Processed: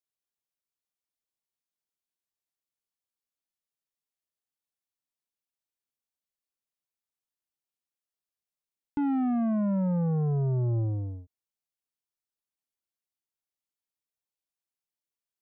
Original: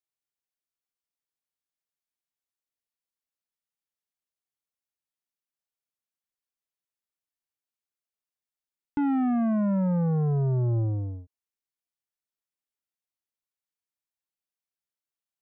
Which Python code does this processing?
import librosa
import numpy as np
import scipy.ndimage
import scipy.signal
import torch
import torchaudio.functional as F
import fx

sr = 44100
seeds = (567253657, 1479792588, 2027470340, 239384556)

y = fx.peak_eq(x, sr, hz=1700.0, db=-4.0, octaves=1.1)
y = y * 10.0 ** (-2.0 / 20.0)